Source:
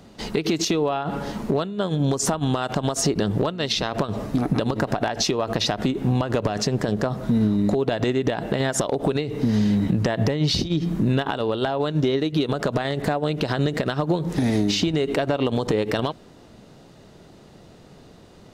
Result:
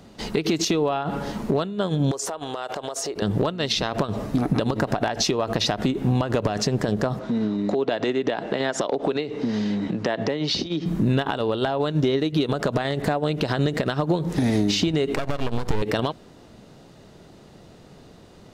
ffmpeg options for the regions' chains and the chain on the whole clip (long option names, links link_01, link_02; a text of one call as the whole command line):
ffmpeg -i in.wav -filter_complex "[0:a]asettb=1/sr,asplit=3[link_01][link_02][link_03];[link_01]atrim=end=2.114[link_04];[link_02]atrim=start=2.11:end=3.22,asetpts=PTS-STARTPTS,afade=type=in:duration=0.004:curve=qsin,afade=type=out:start_time=1.106:duration=0.004:curve=qsin,lowshelf=frequency=300:width_type=q:width=1.5:gain=-13.5,acompressor=threshold=-26dB:ratio=4:attack=3.2:release=140:knee=1:detection=peak[link_05];[link_03]atrim=start=3.216[link_06];[link_04][link_05]acrossfade=duration=0.004:curve1=hsin:curve2=qsin[link_07];[link_07][link_06]acrossfade=duration=0.004:curve1=qsin:curve2=hsin,asettb=1/sr,asplit=3[link_08][link_09][link_10];[link_08]atrim=end=7.194[link_11];[link_09]atrim=start=7.19:end=10.86,asetpts=PTS-STARTPTS,afade=type=in:duration=0.004:curve=qsin,afade=type=out:start_time=3.666:duration=0.004:curve=qsin,lowpass=9200,acrossover=split=210 6900:gain=0.178 1 0.178[link_12][link_13][link_14];[link_12][link_13][link_14]amix=inputs=3:normalize=0[link_15];[link_10]atrim=start=10.856[link_16];[link_11][link_15]acrossfade=duration=0.004:curve1=hsin:curve2=qsin[link_17];[link_17][link_16]acrossfade=duration=0.004:curve1=qsin:curve2=hsin,asettb=1/sr,asplit=3[link_18][link_19][link_20];[link_18]atrim=end=15.154[link_21];[link_19]atrim=start=15.15:end=15.82,asetpts=PTS-STARTPTS,afade=type=in:duration=0.004:curve=qsin,afade=type=out:start_time=0.666:duration=0.004:curve=qsin,aeval=exprs='max(val(0),0)':channel_layout=same,asubboost=boost=7.5:cutoff=170[link_22];[link_20]atrim=start=15.816[link_23];[link_21][link_22]acrossfade=duration=0.004:curve1=hsin:curve2=qsin[link_24];[link_24][link_23]acrossfade=duration=0.004:curve1=qsin:curve2=hsin" out.wav